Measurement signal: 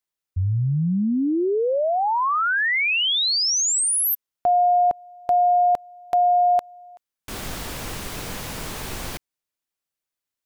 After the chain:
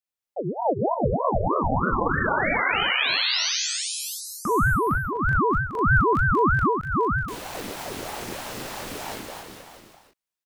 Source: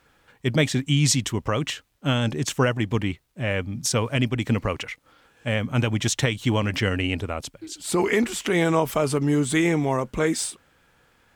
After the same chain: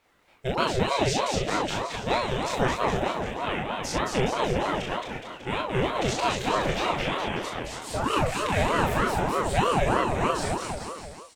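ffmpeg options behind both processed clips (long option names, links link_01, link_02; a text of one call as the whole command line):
ffmpeg -i in.wav -filter_complex "[0:a]acrossover=split=5200[link_01][link_02];[link_02]acompressor=threshold=-34dB:ratio=4:attack=1:release=60[link_03];[link_01][link_03]amix=inputs=2:normalize=0,asplit=2[link_04][link_05];[link_05]aecho=0:1:220|418|596.2|756.6|900.9:0.631|0.398|0.251|0.158|0.1[link_06];[link_04][link_06]amix=inputs=2:normalize=0,flanger=delay=22.5:depth=2.4:speed=0.32,asplit=2[link_07][link_08];[link_08]adelay=38,volume=-3dB[link_09];[link_07][link_09]amix=inputs=2:normalize=0,aeval=exprs='val(0)*sin(2*PI*550*n/s+550*0.55/3.2*sin(2*PI*3.2*n/s))':channel_layout=same" out.wav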